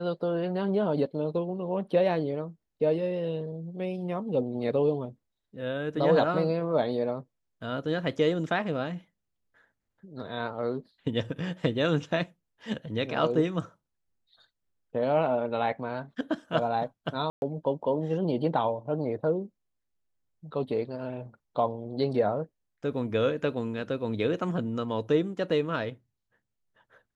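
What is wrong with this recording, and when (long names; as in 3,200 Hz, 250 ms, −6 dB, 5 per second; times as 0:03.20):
0:17.30–0:17.42: drop-out 121 ms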